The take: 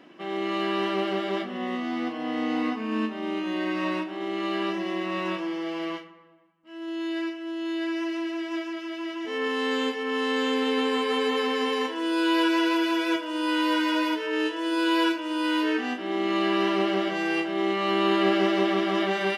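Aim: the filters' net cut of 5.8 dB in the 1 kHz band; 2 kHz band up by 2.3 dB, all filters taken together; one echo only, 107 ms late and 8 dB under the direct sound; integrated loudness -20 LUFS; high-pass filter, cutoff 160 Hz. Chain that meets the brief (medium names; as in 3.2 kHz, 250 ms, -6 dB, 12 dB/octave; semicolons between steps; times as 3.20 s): high-pass 160 Hz; peaking EQ 1 kHz -8.5 dB; peaking EQ 2 kHz +5.5 dB; delay 107 ms -8 dB; trim +6.5 dB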